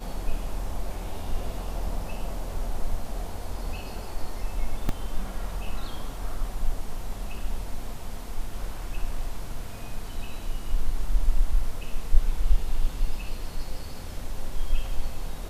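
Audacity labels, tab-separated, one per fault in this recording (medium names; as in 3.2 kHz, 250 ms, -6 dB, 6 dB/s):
4.890000	4.890000	dropout 2 ms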